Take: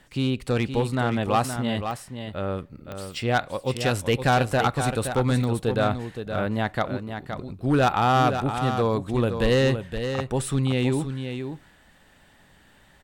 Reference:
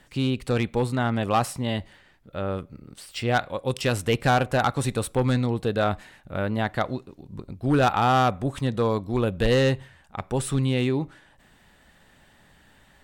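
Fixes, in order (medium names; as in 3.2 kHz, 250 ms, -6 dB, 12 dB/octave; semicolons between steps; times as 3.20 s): de-click; inverse comb 519 ms -8 dB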